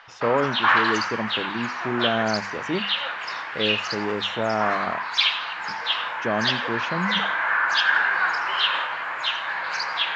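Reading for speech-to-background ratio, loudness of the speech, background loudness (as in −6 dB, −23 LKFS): −4.5 dB, −28.0 LKFS, −23.5 LKFS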